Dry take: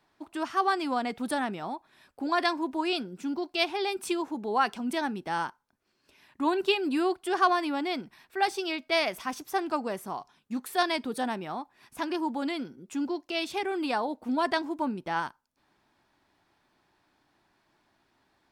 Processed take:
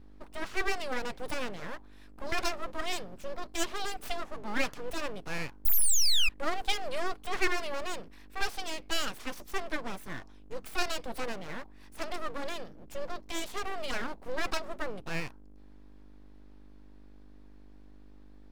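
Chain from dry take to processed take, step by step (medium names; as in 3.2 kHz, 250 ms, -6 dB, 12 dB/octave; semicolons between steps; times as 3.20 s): hum 50 Hz, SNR 17 dB; painted sound fall, 5.65–6.29 s, 1.2–8.7 kHz -18 dBFS; full-wave rectifier; trim -2 dB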